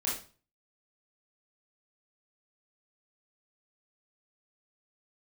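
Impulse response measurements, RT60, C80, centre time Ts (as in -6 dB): 0.40 s, 10.0 dB, 39 ms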